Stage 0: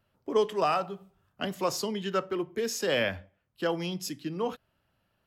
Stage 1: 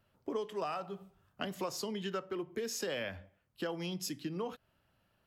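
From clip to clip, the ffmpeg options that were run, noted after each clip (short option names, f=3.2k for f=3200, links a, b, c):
-af "acompressor=threshold=-35dB:ratio=5"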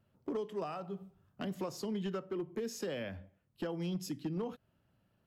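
-af "equalizer=f=170:w=0.37:g=10.5,volume=24dB,asoftclip=hard,volume=-24dB,volume=-6.5dB"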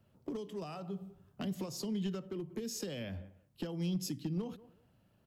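-filter_complex "[0:a]equalizer=f=1.5k:w=1.3:g=-3,asplit=2[a][b];[b]adelay=184,lowpass=f=1.9k:p=1,volume=-23dB,asplit=2[c][d];[d]adelay=184,lowpass=f=1.9k:p=1,volume=0.18[e];[a][c][e]amix=inputs=3:normalize=0,acrossover=split=220|3000[f][g][h];[g]acompressor=threshold=-48dB:ratio=4[i];[f][i][h]amix=inputs=3:normalize=0,volume=4.5dB"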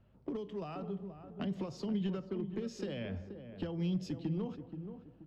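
-filter_complex "[0:a]aeval=exprs='val(0)+0.000282*(sin(2*PI*50*n/s)+sin(2*PI*2*50*n/s)/2+sin(2*PI*3*50*n/s)/3+sin(2*PI*4*50*n/s)/4+sin(2*PI*5*50*n/s)/5)':c=same,lowpass=3.1k,asplit=2[a][b];[b]adelay=478,lowpass=f=1k:p=1,volume=-8.5dB,asplit=2[c][d];[d]adelay=478,lowpass=f=1k:p=1,volume=0.38,asplit=2[e][f];[f]adelay=478,lowpass=f=1k:p=1,volume=0.38,asplit=2[g][h];[h]adelay=478,lowpass=f=1k:p=1,volume=0.38[i];[a][c][e][g][i]amix=inputs=5:normalize=0,volume=1dB"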